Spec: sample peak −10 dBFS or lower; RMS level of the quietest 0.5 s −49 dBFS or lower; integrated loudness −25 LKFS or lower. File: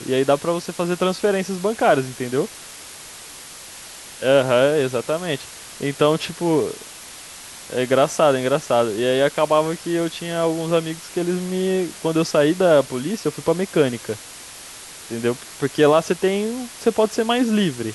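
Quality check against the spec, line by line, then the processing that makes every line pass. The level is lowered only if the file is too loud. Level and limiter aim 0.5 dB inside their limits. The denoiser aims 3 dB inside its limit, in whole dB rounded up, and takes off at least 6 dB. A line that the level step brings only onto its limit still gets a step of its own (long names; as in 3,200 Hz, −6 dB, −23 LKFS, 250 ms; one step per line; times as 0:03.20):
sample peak −4.0 dBFS: out of spec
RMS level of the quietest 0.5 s −39 dBFS: out of spec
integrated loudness −20.5 LKFS: out of spec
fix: broadband denoise 8 dB, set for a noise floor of −39 dBFS
level −5 dB
brickwall limiter −10.5 dBFS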